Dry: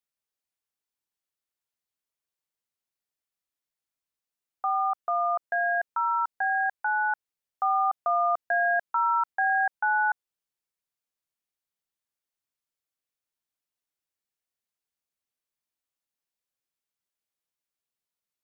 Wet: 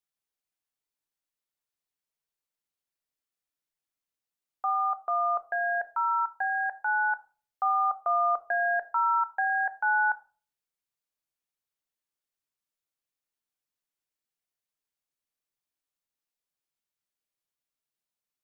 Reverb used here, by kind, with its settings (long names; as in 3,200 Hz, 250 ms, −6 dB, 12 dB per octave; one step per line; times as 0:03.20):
rectangular room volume 280 cubic metres, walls furnished, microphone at 0.45 metres
level −2 dB